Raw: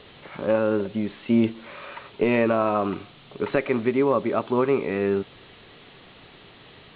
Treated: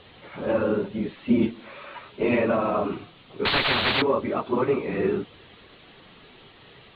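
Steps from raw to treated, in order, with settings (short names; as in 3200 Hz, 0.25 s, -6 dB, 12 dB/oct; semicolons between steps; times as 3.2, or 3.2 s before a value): phase scrambler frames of 50 ms; 3.45–4.02 spectral compressor 10:1; gain -1.5 dB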